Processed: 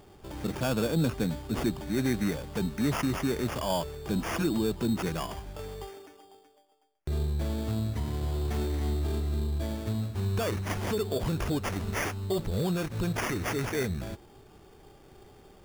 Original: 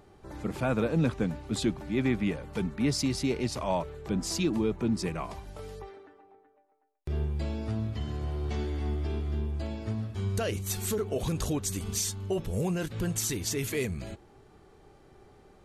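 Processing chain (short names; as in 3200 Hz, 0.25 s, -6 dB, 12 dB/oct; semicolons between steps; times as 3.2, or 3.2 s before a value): in parallel at +1 dB: limiter -26 dBFS, peak gain reduction 10 dB; on the sum: sample-rate reducer 4000 Hz, jitter 0%; gain -4 dB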